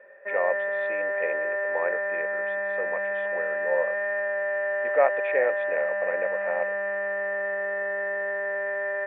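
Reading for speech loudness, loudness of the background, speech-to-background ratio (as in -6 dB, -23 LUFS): -31.0 LUFS, -27.5 LUFS, -3.5 dB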